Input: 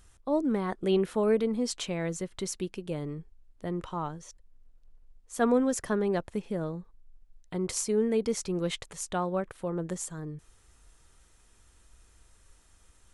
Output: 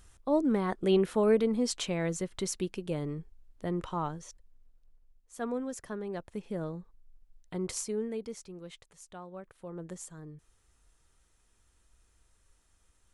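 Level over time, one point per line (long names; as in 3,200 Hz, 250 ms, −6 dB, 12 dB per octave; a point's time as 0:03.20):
0:04.19 +0.5 dB
0:05.41 −10 dB
0:06.07 −10 dB
0:06.57 −3 dB
0:07.68 −3 dB
0:08.59 −15.5 dB
0:09.28 −15.5 dB
0:09.85 −8 dB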